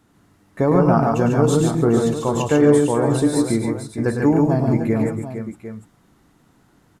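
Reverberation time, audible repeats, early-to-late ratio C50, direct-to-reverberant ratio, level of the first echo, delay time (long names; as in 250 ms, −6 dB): no reverb audible, 5, no reverb audible, no reverb audible, −8.0 dB, 105 ms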